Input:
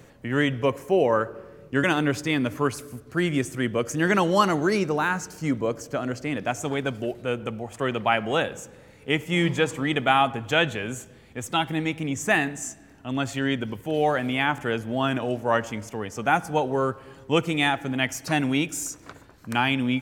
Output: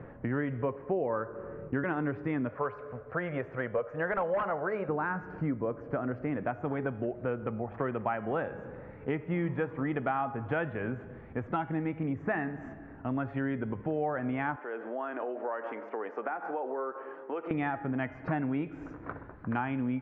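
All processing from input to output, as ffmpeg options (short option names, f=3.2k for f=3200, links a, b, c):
-filter_complex "[0:a]asettb=1/sr,asplit=3[a][b][c];[a]atrim=end=2.494[d];[b]atrim=start=2.49:end=4.89,asetpts=PTS-STARTPTS,afade=t=in:d=0.004:c=qsin,afade=t=out:st=2.396:d=0.004:c=qsin,lowshelf=f=410:t=q:w=3:g=-8,aeval=exprs='0.2*(abs(mod(val(0)/0.2+3,4)-2)-1)':c=same[e];[c]atrim=start=4.886[f];[d][e]acrossfade=d=0.004:c1=hsin:c2=qsin[g];[g][f]acrossfade=d=0.004:c1=qsin:c2=hsin,asettb=1/sr,asplit=3[h][i][j];[h]atrim=end=14.564[k];[i]atrim=start=14.56:end=17.51,asetpts=PTS-STARTPTS,afade=t=in:d=0.004:c=qsin,afade=t=out:st=2.946:d=0.004:c=qsin,acompressor=threshold=-30dB:ratio=10:attack=3.2:release=140:knee=1:detection=peak,highpass=f=340:w=0.5412,highpass=f=340:w=1.3066[l];[j]atrim=start=17.506[m];[k][l]acrossfade=d=0.004:c1=hsin:c2=qsin[n];[n][m]acrossfade=d=0.004:c1=qsin:c2=hsin,lowpass=f=1.7k:w=0.5412,lowpass=f=1.7k:w=1.3066,bandreject=f=206.7:t=h:w=4,bandreject=f=413.4:t=h:w=4,bandreject=f=620.1:t=h:w=4,bandreject=f=826.8:t=h:w=4,bandreject=f=1.0335k:t=h:w=4,bandreject=f=1.2402k:t=h:w=4,bandreject=f=1.4469k:t=h:w=4,bandreject=f=1.6536k:t=h:w=4,bandreject=f=1.8603k:t=h:w=4,bandreject=f=2.067k:t=h:w=4,bandreject=f=2.2737k:t=h:w=4,bandreject=f=2.4804k:t=h:w=4,bandreject=f=2.6871k:t=h:w=4,bandreject=f=2.8938k:t=h:w=4,bandreject=f=3.1005k:t=h:w=4,bandreject=f=3.3072k:t=h:w=4,bandreject=f=3.5139k:t=h:w=4,bandreject=f=3.7206k:t=h:w=4,bandreject=f=3.9273k:t=h:w=4,bandreject=f=4.134k:t=h:w=4,bandreject=f=4.3407k:t=h:w=4,bandreject=f=4.5474k:t=h:w=4,bandreject=f=4.7541k:t=h:w=4,bandreject=f=4.9608k:t=h:w=4,bandreject=f=5.1675k:t=h:w=4,bandreject=f=5.3742k:t=h:w=4,bandreject=f=5.5809k:t=h:w=4,bandreject=f=5.7876k:t=h:w=4,bandreject=f=5.9943k:t=h:w=4,bandreject=f=6.201k:t=h:w=4,bandreject=f=6.4077k:t=h:w=4,bandreject=f=6.6144k:t=h:w=4,bandreject=f=6.8211k:t=h:w=4,bandreject=f=7.0278k:t=h:w=4,bandreject=f=7.2345k:t=h:w=4,acompressor=threshold=-35dB:ratio=4,volume=4.5dB"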